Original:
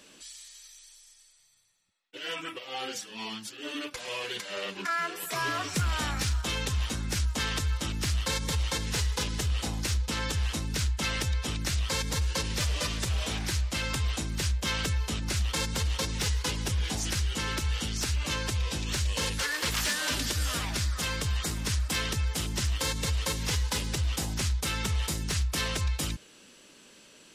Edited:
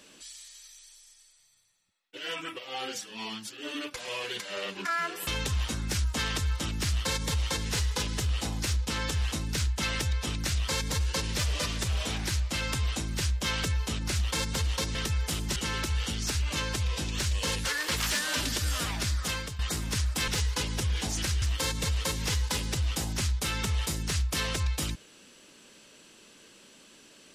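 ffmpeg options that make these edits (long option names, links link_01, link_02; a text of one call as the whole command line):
ffmpeg -i in.wav -filter_complex "[0:a]asplit=7[link_01][link_02][link_03][link_04][link_05][link_06][link_07];[link_01]atrim=end=5.272[link_08];[link_02]atrim=start=6.478:end=16.162[link_09];[link_03]atrim=start=22.018:end=22.632[link_10];[link_04]atrim=start=17.298:end=21.33,asetpts=PTS-STARTPTS,afade=type=out:start_time=3.742:duration=0.29:silence=0.199526[link_11];[link_05]atrim=start=21.33:end=22.022,asetpts=PTS-STARTPTS,afade=type=in:duration=0.004:curve=hsin:silence=0.199526[link_12];[link_06]atrim=start=16.158:end=17.302[link_13];[link_07]atrim=start=22.628[link_14];[link_08][link_09]acrossfade=duration=0.004:curve1=hsin:curve2=hsin[link_15];[link_15][link_10]acrossfade=duration=0.004:curve1=hsin:curve2=hsin[link_16];[link_11][link_12]concat=n=2:v=0:a=1[link_17];[link_16][link_17]acrossfade=duration=0.004:curve1=hsin:curve2=hsin[link_18];[link_18][link_13]acrossfade=duration=0.004:curve1=hsin:curve2=hsin[link_19];[link_19][link_14]acrossfade=duration=0.004:curve1=hsin:curve2=hsin" out.wav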